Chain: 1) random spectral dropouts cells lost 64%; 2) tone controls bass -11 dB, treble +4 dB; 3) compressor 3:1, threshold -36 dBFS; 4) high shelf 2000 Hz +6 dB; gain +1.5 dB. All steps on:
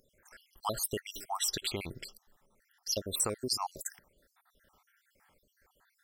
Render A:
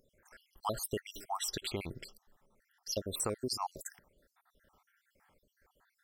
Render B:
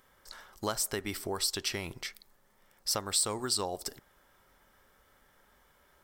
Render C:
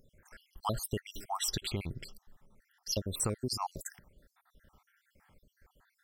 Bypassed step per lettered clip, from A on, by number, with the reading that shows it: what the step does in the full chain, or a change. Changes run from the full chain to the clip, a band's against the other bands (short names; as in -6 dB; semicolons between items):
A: 4, 8 kHz band -5.0 dB; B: 1, 2 kHz band +3.0 dB; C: 2, 125 Hz band +9.0 dB